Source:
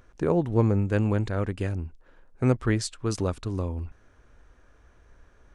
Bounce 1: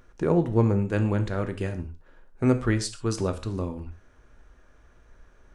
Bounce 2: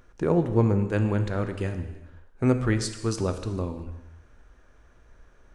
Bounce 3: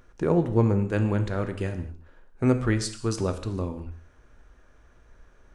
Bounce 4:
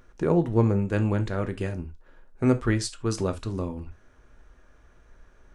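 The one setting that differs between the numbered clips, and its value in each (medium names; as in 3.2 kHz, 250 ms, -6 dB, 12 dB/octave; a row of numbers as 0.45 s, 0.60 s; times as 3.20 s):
gated-style reverb, gate: 160 ms, 410 ms, 250 ms, 100 ms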